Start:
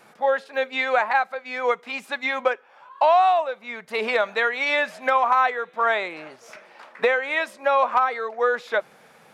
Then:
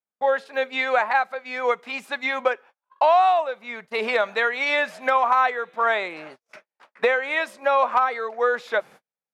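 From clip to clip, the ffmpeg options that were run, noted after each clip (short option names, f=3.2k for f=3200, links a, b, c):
-af "agate=range=-47dB:threshold=-42dB:ratio=16:detection=peak"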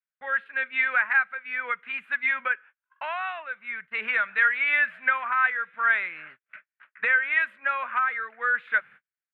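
-af "firequalizer=gain_entry='entry(130,0);entry(350,-11);entry(790,-12);entry(1500,13);entry(2800,5);entry(5300,-29);entry(8800,-19)':delay=0.05:min_phase=1,volume=-8dB"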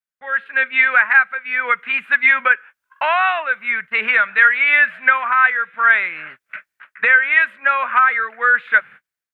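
-af "dynaudnorm=f=160:g=5:m=15dB"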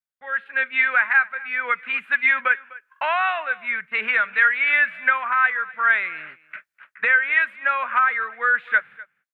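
-af "aecho=1:1:251:0.0944,volume=-5dB"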